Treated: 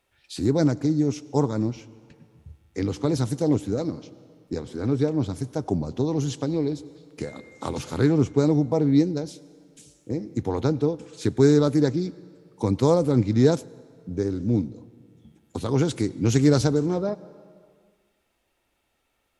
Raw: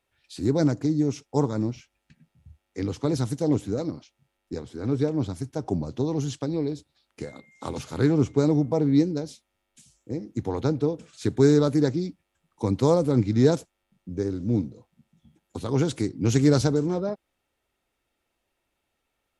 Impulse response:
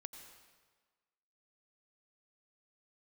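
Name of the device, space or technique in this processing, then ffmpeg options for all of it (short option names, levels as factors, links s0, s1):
ducked reverb: -filter_complex "[0:a]asplit=3[s0][s1][s2];[1:a]atrim=start_sample=2205[s3];[s1][s3]afir=irnorm=-1:irlink=0[s4];[s2]apad=whole_len=855377[s5];[s4][s5]sidechaincompress=threshold=0.0316:ratio=8:attack=5.8:release=910,volume=1.58[s6];[s0][s6]amix=inputs=2:normalize=0"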